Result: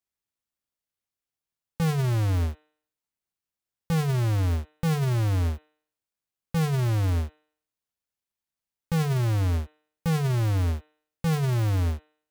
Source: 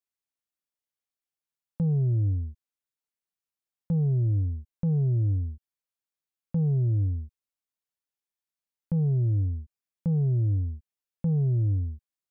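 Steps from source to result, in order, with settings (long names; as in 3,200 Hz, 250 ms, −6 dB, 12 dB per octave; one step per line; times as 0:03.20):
each half-wave held at its own peak
parametric band 65 Hz +7 dB 2.8 octaves
hum removal 152.6 Hz, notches 26
brickwall limiter −20.5 dBFS, peak gain reduction 9.5 dB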